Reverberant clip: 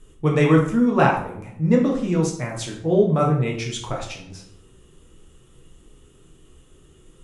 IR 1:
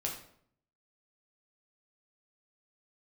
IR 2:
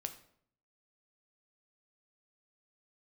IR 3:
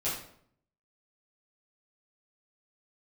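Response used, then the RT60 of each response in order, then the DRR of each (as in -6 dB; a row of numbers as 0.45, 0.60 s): 1; 0.65, 0.65, 0.65 s; -1.5, 6.5, -11.0 dB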